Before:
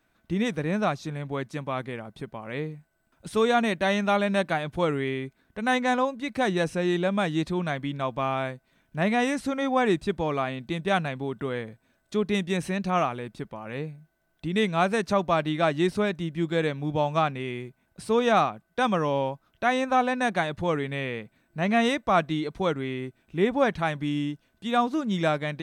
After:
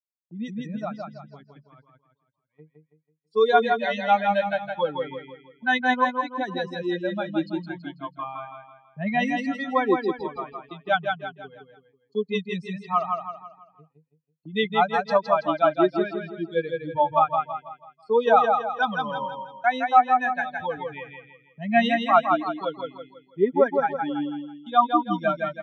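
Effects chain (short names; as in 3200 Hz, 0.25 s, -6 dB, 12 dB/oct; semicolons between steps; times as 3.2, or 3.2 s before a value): per-bin expansion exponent 3; gate -49 dBFS, range -21 dB; speaker cabinet 280–4400 Hz, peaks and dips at 830 Hz +5 dB, 1300 Hz +4 dB, 2300 Hz -4 dB; feedback echo 0.164 s, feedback 40%, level -4.5 dB; AGC gain up to 11.5 dB; gain -2.5 dB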